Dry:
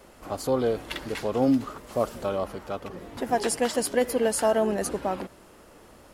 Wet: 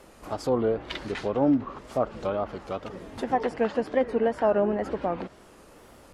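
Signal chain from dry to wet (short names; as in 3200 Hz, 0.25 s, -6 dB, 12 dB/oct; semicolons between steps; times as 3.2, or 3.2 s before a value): wow and flutter 140 cents; treble ducked by the level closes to 1900 Hz, closed at -22.5 dBFS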